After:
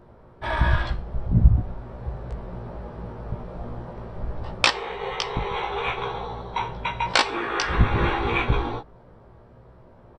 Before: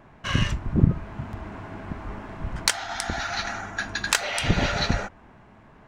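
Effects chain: speed mistake 78 rpm record played at 45 rpm; doubler 17 ms -3 dB

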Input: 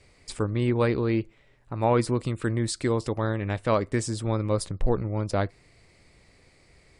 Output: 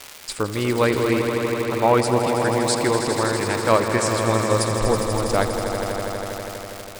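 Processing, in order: on a send: swelling echo 81 ms, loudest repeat 5, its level -10 dB; on the sum: crackle 350/s -31 dBFS; low shelf 300 Hz -11.5 dB; gain +8 dB

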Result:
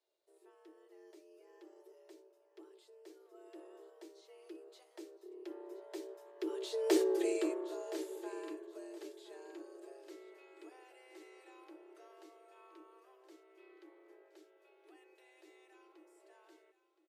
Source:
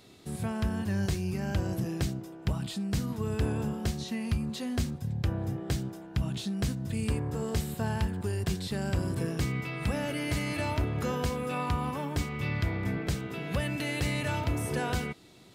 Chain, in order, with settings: Doppler pass-by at 6.42, 18 m/s, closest 2.2 m; varispeed -9%; notch comb 240 Hz; frequency shift +260 Hz; on a send: feedback echo 1.02 s, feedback 20%, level -15 dB; on the sum: gain +4 dB

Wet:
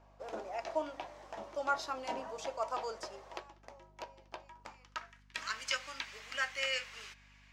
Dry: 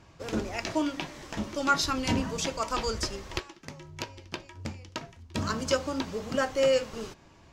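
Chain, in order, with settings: band-pass sweep 690 Hz -> 2100 Hz, 4.29–5.46; RIAA curve recording; hum 50 Hz, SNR 23 dB; gain +1 dB

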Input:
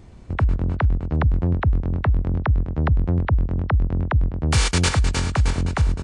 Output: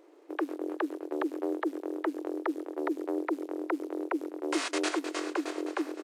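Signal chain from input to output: high shelf 2400 Hz -7 dB; companded quantiser 8-bit; downsampling 32000 Hz; ring modulator 220 Hz; brick-wall FIR high-pass 300 Hz; warbling echo 0.552 s, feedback 47%, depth 62 cents, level -22 dB; gain -3.5 dB

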